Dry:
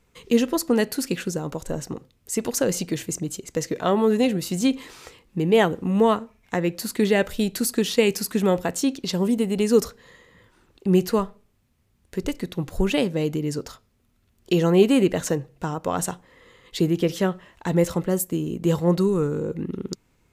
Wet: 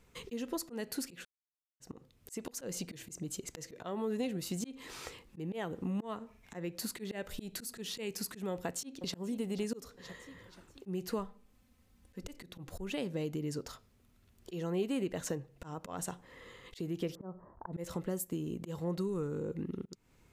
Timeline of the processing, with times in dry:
1.25–1.80 s: mute
8.53–9.16 s: echo throw 480 ms, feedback 40%, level -15.5 dB
11.24–12.24 s: comb 3.9 ms, depth 64%
17.15–17.73 s: steep low-pass 1.2 kHz
whole clip: slow attack 322 ms; compression 2.5:1, threshold -38 dBFS; trim -1 dB

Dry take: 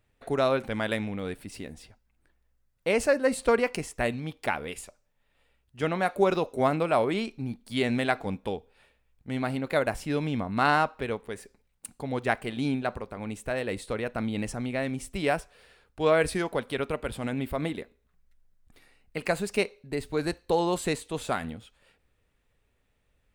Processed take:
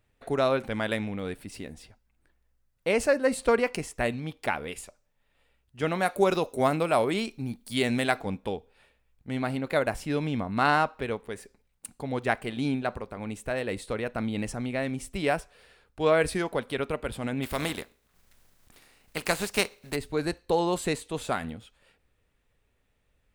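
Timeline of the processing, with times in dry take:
5.87–8.21 s: treble shelf 5.8 kHz +10.5 dB
17.42–19.95 s: spectral contrast reduction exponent 0.59

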